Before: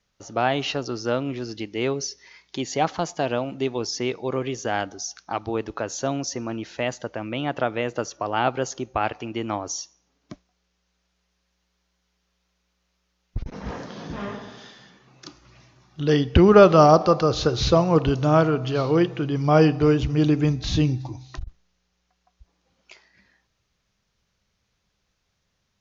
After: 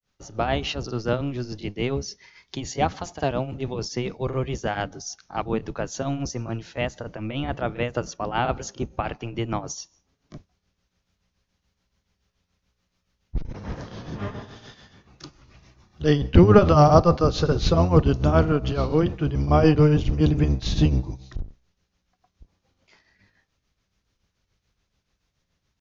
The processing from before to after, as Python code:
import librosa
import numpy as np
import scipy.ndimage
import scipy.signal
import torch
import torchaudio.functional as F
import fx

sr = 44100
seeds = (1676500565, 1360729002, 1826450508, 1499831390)

y = fx.octave_divider(x, sr, octaves=1, level_db=2.0)
y = fx.granulator(y, sr, seeds[0], grain_ms=223.0, per_s=7.0, spray_ms=39.0, spread_st=0)